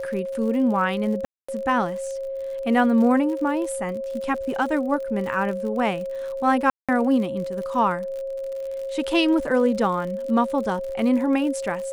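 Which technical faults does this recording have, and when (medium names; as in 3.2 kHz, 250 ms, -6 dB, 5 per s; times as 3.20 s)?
crackle 69 per s -32 dBFS
whine 540 Hz -27 dBFS
1.25–1.49 s: dropout 235 ms
6.70–6.89 s: dropout 186 ms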